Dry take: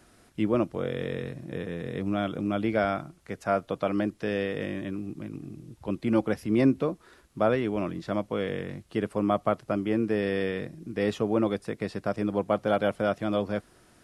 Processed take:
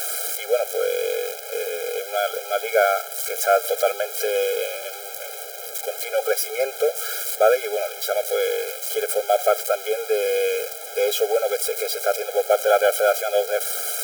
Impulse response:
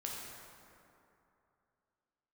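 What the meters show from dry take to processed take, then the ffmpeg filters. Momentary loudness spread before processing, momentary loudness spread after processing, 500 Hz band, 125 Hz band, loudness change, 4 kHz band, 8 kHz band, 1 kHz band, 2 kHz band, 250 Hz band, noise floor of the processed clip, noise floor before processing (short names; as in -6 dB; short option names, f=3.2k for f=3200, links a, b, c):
10 LU, 9 LU, +8.5 dB, under -40 dB, +6.5 dB, +13.0 dB, n/a, +8.0 dB, +8.5 dB, under -20 dB, -35 dBFS, -60 dBFS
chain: -af "aeval=exprs='val(0)+0.5*0.0251*sgn(val(0))':c=same,aemphasis=mode=production:type=50kf,afftfilt=real='re*eq(mod(floor(b*sr/1024/420),2),1)':imag='im*eq(mod(floor(b*sr/1024/420),2),1)':win_size=1024:overlap=0.75,volume=7.5dB"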